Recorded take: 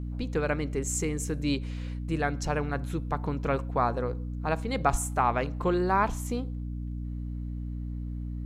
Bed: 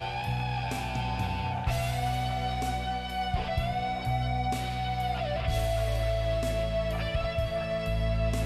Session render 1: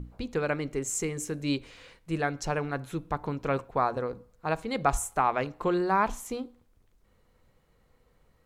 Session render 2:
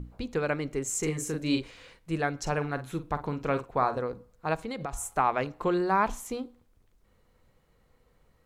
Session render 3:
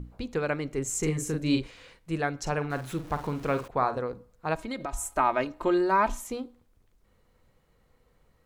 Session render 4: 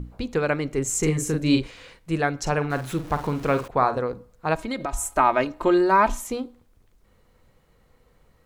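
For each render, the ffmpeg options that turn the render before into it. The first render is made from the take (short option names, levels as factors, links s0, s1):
-af "bandreject=f=60:t=h:w=6,bandreject=f=120:t=h:w=6,bandreject=f=180:t=h:w=6,bandreject=f=240:t=h:w=6,bandreject=f=300:t=h:w=6"
-filter_complex "[0:a]asettb=1/sr,asplit=3[s0][s1][s2];[s0]atrim=end=0.994[s3];[s1]atrim=start=0.99:end=1.71,asetpts=PTS-STARTPTS,afade=t=in:d=0.004:c=qsin,afade=t=out:st=0.716:d=0.004:c=qsin,asplit=2[s4][s5];[s5]adelay=39,volume=0.668[s6];[s4][s6]amix=inputs=2:normalize=0,atrim=end_sample=31752[s7];[s2]atrim=start=1.706[s8];[s3][s7]acrossfade=d=0.004:c1=hsin:c2=qsin[s9];[s9][s8]acrossfade=d=0.004:c1=qsin:c2=hsin,asettb=1/sr,asplit=3[s10][s11][s12];[s10]atrim=end=2.384[s13];[s11]atrim=start=2.38:end=4,asetpts=PTS-STARTPTS,afade=t=in:d=0.004:c=qsin,afade=t=out:st=1.616:d=0.004:c=qsin,asplit=2[s14][s15];[s15]adelay=47,volume=0.251[s16];[s14][s16]amix=inputs=2:normalize=0,atrim=end_sample=71442[s17];[s12]atrim=start=3.996[s18];[s13][s17]acrossfade=d=0.004:c1=hsin:c2=qsin[s19];[s19][s18]acrossfade=d=0.004:c1=qsin:c2=hsin,asplit=3[s20][s21][s22];[s20]afade=t=out:st=4.56:d=0.02[s23];[s21]acompressor=threshold=0.0316:ratio=10:attack=3.2:release=140:knee=1:detection=peak,afade=t=in:st=4.56:d=0.02,afade=t=out:st=5.07:d=0.02[s24];[s22]afade=t=in:st=5.07:d=0.02[s25];[s23][s24][s25]amix=inputs=3:normalize=0"
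-filter_complex "[0:a]asettb=1/sr,asplit=3[s0][s1][s2];[s0]atrim=end=0.784[s3];[s1]atrim=start=0.78:end=1.67,asetpts=PTS-STARTPTS,afade=t=in:d=0.004:c=qsin,afade=t=out:st=0.886:d=0.004:c=qsin,lowshelf=f=170:g=7.5[s4];[s2]atrim=start=1.666[s5];[s3][s4]acrossfade=d=0.004:c1=hsin:c2=qsin[s6];[s6][s5]acrossfade=d=0.004:c1=qsin:c2=hsin,asettb=1/sr,asplit=3[s7][s8][s9];[s7]atrim=end=2.704[s10];[s8]atrim=start=2.7:end=3.68,asetpts=PTS-STARTPTS,afade=t=in:d=0.004:c=qsin,afade=t=out:st=0.976:d=0.004:c=qsin,aeval=exprs='val(0)+0.5*0.00841*sgn(val(0))':c=same[s11];[s9]atrim=start=3.676[s12];[s10][s11]acrossfade=d=0.004:c1=hsin:c2=qsin[s13];[s13][s12]acrossfade=d=0.004:c1=qsin:c2=hsin,asettb=1/sr,asplit=3[s14][s15][s16];[s14]atrim=end=4.554[s17];[s15]atrim=start=4.55:end=6.26,asetpts=PTS-STARTPTS,afade=t=in:d=0.004:c=qsin,afade=t=out:st=1.706:d=0.004:c=qsin,aecho=1:1:3.2:0.63,atrim=end_sample=75411[s18];[s16]atrim=start=6.256[s19];[s17][s18]acrossfade=d=0.004:c1=hsin:c2=qsin[s20];[s20][s19]acrossfade=d=0.004:c1=qsin:c2=hsin"
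-af "volume=1.88"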